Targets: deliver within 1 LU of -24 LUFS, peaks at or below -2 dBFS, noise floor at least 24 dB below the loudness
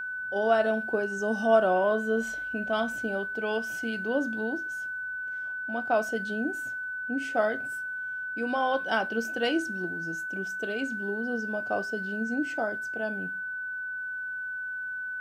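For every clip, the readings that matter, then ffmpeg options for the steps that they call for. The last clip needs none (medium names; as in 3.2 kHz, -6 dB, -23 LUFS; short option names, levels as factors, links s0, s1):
steady tone 1.5 kHz; tone level -32 dBFS; loudness -29.5 LUFS; peak level -9.5 dBFS; loudness target -24.0 LUFS
-> -af "bandreject=f=1500:w=30"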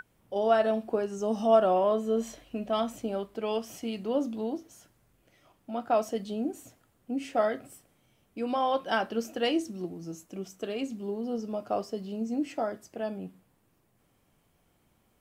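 steady tone not found; loudness -30.5 LUFS; peak level -10.0 dBFS; loudness target -24.0 LUFS
-> -af "volume=2.11"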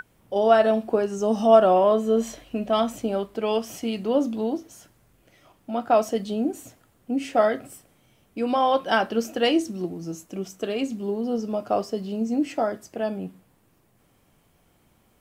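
loudness -24.0 LUFS; peak level -3.5 dBFS; noise floor -63 dBFS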